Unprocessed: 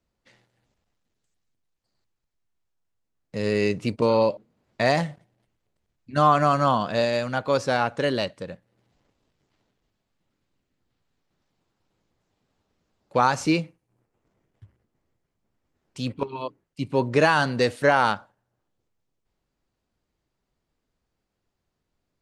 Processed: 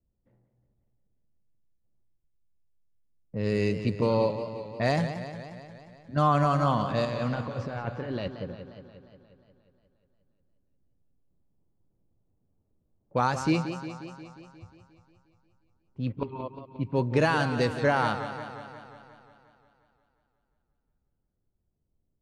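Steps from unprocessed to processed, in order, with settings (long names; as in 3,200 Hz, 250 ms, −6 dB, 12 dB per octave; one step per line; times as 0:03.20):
0:07.05–0:08.28: compressor whose output falls as the input rises −29 dBFS, ratio −1
low-pass that shuts in the quiet parts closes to 610 Hz, open at −18.5 dBFS
low-shelf EQ 180 Hz +11 dB
feedback echo with a swinging delay time 178 ms, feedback 65%, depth 97 cents, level −10.5 dB
level −6.5 dB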